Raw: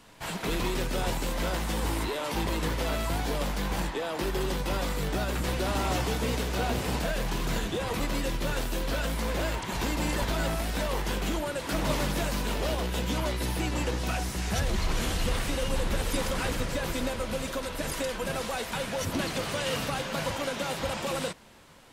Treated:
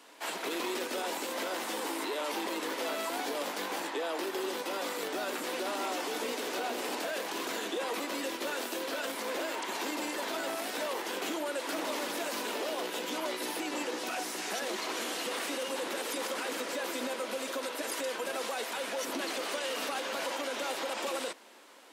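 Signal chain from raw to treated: steep high-pass 270 Hz 36 dB/oct; limiter -25.5 dBFS, peak gain reduction 7.5 dB

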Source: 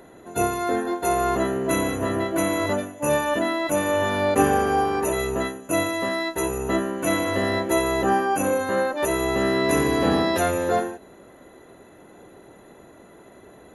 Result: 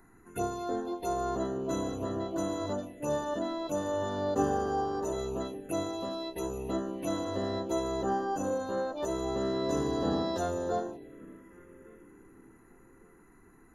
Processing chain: added noise brown -56 dBFS; narrowing echo 1.156 s, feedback 45%, band-pass 360 Hz, level -16 dB; envelope phaser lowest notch 530 Hz, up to 2300 Hz, full sweep at -20.5 dBFS; gain -8.5 dB

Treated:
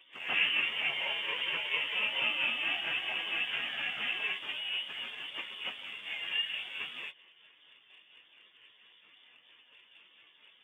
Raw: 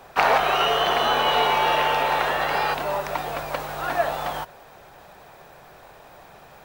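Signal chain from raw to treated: rotary speaker horn 7 Hz; on a send: reverse echo 92 ms -12.5 dB; on the sum: treble ducked by the level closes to 2200 Hz, closed at -21 dBFS; careless resampling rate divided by 8×, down none, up hold; plain phase-vocoder stretch 1.6×; inverted band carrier 3500 Hz; in parallel at -10.5 dB: crossover distortion -44.5 dBFS; on the sum: HPF 150 Hz 12 dB/oct; gain -7.5 dB

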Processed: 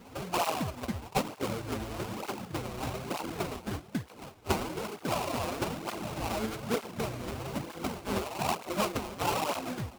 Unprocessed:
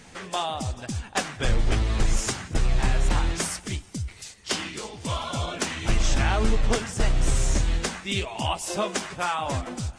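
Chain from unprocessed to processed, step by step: vocal rider within 5 dB 0.5 s; HPF 170 Hz 12 dB/oct; air absorption 72 m; sample-rate reducer 1800 Hz, jitter 20%; tape flanging out of phase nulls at 1.1 Hz, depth 7.3 ms

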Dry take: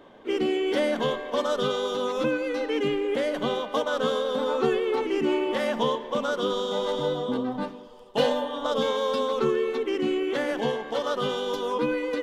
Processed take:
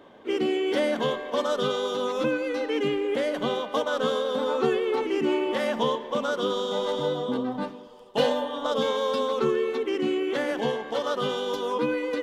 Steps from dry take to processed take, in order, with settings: HPF 54 Hz 6 dB/oct

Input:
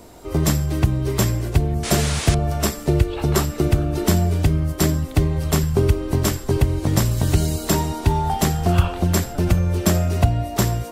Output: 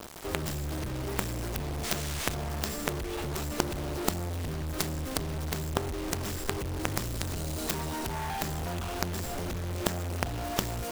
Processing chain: tracing distortion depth 0.083 ms; compressor 5:1, threshold -21 dBFS, peak gain reduction 11.5 dB; dynamic EQ 120 Hz, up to -6 dB, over -40 dBFS, Q 4.7; companded quantiser 2-bit; gain -8 dB

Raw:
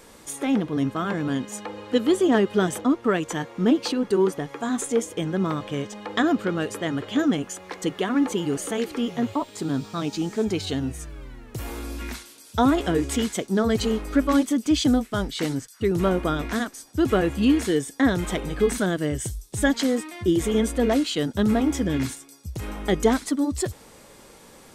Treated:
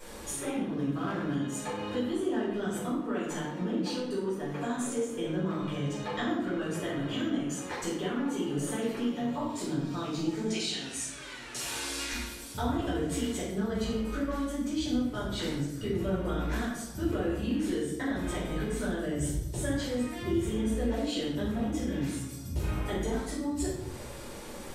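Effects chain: 10.46–12.12 weighting filter ITU-R 468; compressor 5:1, threshold -36 dBFS, peak gain reduction 19.5 dB; shoebox room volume 260 m³, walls mixed, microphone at 4.7 m; 0.73–1.36 running maximum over 3 samples; gain -7.5 dB

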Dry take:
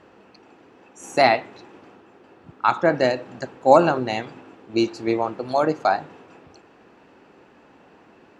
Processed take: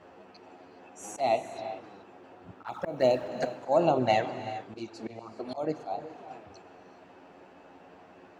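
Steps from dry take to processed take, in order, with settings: 2.66–3.28 G.711 law mismatch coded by mu; bell 680 Hz +6.5 dB 0.62 oct; envelope flanger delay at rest 11.9 ms, full sweep at -11.5 dBFS; auto swell 0.437 s; non-linear reverb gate 0.44 s rising, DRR 11 dB

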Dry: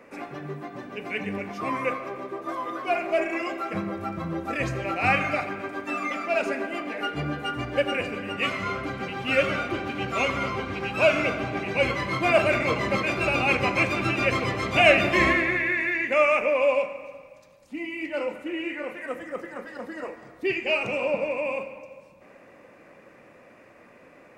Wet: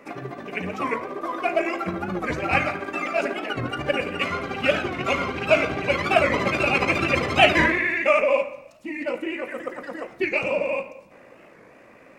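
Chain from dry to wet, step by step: granular stretch 0.5×, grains 37 ms; notches 50/100/150 Hz; record warp 45 rpm, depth 160 cents; gain +3.5 dB

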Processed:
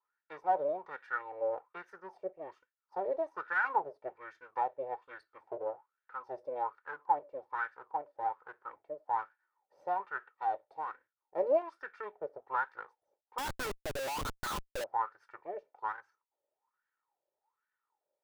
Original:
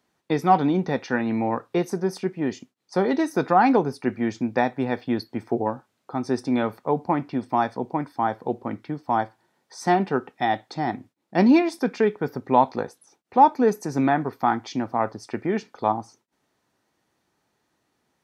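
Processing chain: minimum comb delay 2.2 ms; wah 1.2 Hz 580–1600 Hz, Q 9.2; 13.38–14.84 Schmitt trigger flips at -48.5 dBFS

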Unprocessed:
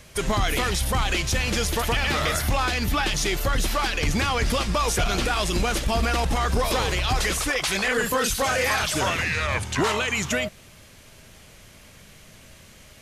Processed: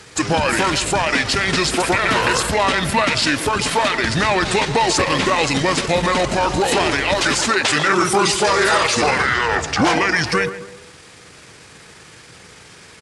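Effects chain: HPF 120 Hz 12 dB/oct; low shelf 180 Hz -5.5 dB; tape echo 0.137 s, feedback 49%, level -10 dB, low-pass 1600 Hz; pitch shift -4.5 st; gain +8 dB

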